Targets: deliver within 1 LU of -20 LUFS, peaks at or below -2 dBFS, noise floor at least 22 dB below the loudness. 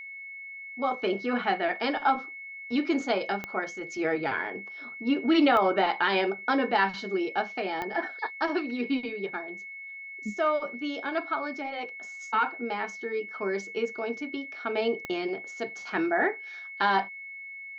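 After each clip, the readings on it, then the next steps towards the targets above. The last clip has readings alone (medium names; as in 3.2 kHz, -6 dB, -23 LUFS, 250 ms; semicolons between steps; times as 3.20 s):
clicks found 4; steady tone 2.2 kHz; tone level -39 dBFS; loudness -29.0 LUFS; peak level -11.5 dBFS; loudness target -20.0 LUFS
-> de-click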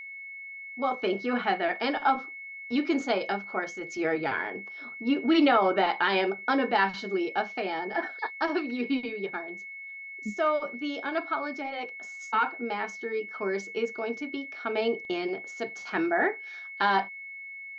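clicks found 0; steady tone 2.2 kHz; tone level -39 dBFS
-> band-stop 2.2 kHz, Q 30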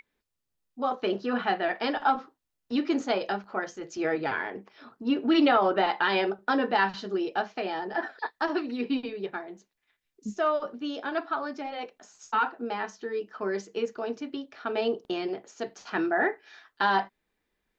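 steady tone not found; loudness -29.0 LUFS; peak level -12.0 dBFS; loudness target -20.0 LUFS
-> trim +9 dB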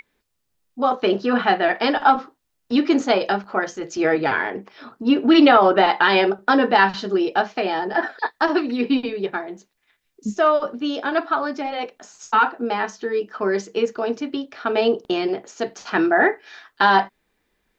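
loudness -20.0 LUFS; peak level -3.0 dBFS; noise floor -73 dBFS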